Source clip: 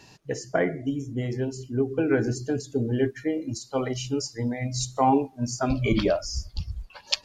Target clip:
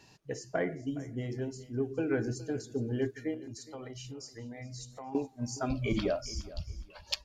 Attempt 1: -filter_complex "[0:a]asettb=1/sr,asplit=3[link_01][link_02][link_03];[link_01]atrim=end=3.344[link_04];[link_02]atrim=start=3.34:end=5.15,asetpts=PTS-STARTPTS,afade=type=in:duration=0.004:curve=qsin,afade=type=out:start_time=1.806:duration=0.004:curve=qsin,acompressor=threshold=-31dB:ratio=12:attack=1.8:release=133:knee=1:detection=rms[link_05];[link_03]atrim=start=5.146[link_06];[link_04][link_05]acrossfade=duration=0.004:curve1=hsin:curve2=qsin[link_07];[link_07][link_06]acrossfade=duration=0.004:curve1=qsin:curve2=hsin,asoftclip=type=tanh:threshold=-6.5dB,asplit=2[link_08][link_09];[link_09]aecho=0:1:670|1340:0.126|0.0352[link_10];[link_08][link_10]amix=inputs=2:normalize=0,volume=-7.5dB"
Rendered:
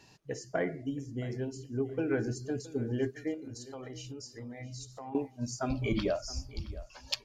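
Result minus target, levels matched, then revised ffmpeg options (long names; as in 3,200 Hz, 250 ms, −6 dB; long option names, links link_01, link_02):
echo 254 ms late
-filter_complex "[0:a]asettb=1/sr,asplit=3[link_01][link_02][link_03];[link_01]atrim=end=3.344[link_04];[link_02]atrim=start=3.34:end=5.15,asetpts=PTS-STARTPTS,afade=type=in:duration=0.004:curve=qsin,afade=type=out:start_time=1.806:duration=0.004:curve=qsin,acompressor=threshold=-31dB:ratio=12:attack=1.8:release=133:knee=1:detection=rms[link_05];[link_03]atrim=start=5.146[link_06];[link_04][link_05]acrossfade=duration=0.004:curve1=hsin:curve2=qsin[link_07];[link_07][link_06]acrossfade=duration=0.004:curve1=qsin:curve2=hsin,asoftclip=type=tanh:threshold=-6.5dB,asplit=2[link_08][link_09];[link_09]aecho=0:1:416|832:0.126|0.0352[link_10];[link_08][link_10]amix=inputs=2:normalize=0,volume=-7.5dB"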